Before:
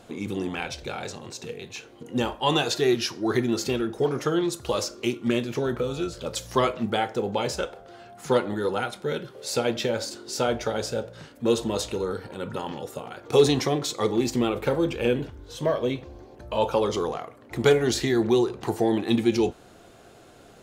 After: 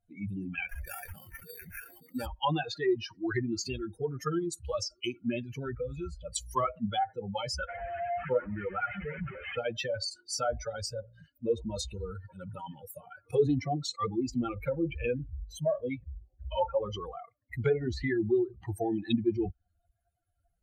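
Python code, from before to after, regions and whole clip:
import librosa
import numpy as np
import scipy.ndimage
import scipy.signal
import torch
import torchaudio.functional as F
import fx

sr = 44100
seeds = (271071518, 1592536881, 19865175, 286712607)

y = fx.chain(x, sr, fx.low_shelf(hz=150.0, db=-10.0),
    fx.sample_hold(seeds[0], rate_hz=4100.0, jitter_pct=0),
    fx.sustainer(db_per_s=21.0), at=(0.68, 2.26))
y = fx.chain(y, sr, fx.delta_mod(bps=16000, step_db=-23.5),
    fx.highpass(hz=44.0, slope=12),
    fx.air_absorb(metres=86.0), at=(7.68, 9.58))
y = fx.bin_expand(y, sr, power=3.0)
y = fx.env_lowpass_down(y, sr, base_hz=1200.0, full_db=-28.0)
y = fx.env_flatten(y, sr, amount_pct=50)
y = y * librosa.db_to_amplitude(-5.0)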